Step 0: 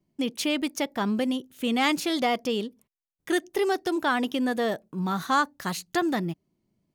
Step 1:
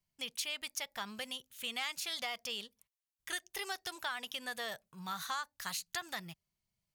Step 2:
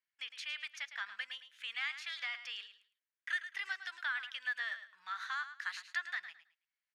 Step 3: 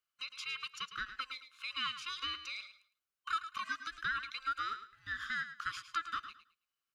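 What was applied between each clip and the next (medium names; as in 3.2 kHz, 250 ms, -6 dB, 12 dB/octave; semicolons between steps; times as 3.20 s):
amplifier tone stack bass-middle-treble 10-0-10; compression 4:1, threshold -35 dBFS, peak gain reduction 10 dB
ladder band-pass 1.9 kHz, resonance 55%; feedback delay 108 ms, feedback 22%, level -11.5 dB; trim +10 dB
every band turned upside down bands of 1 kHz; trim +1 dB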